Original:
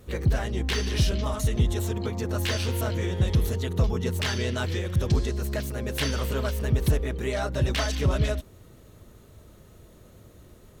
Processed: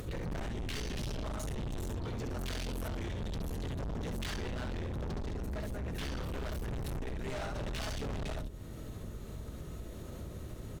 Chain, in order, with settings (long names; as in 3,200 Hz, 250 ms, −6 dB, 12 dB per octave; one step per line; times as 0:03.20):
sub-octave generator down 1 octave, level +2 dB
0:04.30–0:06.34: high-shelf EQ 3,100 Hz −7.5 dB
ambience of single reflections 18 ms −9.5 dB, 68 ms −4.5 dB
upward compression, threshold −39 dBFS
high-shelf EQ 11,000 Hz −5 dB
hard clipping −28.5 dBFS, distortion −3 dB
downward compressor 10 to 1, threshold −38 dBFS, peak gain reduction 8.5 dB
level +1.5 dB